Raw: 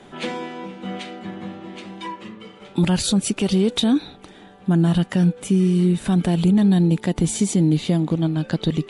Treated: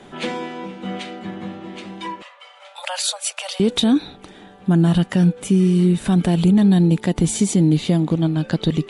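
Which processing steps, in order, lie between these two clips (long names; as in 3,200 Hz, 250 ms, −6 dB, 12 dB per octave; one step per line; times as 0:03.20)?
0:02.22–0:03.60: Butterworth high-pass 540 Hz 96 dB per octave
level +2 dB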